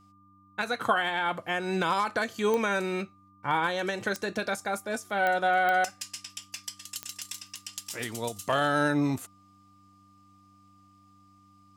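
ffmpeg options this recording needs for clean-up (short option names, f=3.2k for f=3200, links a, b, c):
-af "adeclick=t=4,bandreject=f=97.9:t=h:w=4,bandreject=f=195.8:t=h:w=4,bandreject=f=293.7:t=h:w=4,bandreject=f=1.2k:w=30"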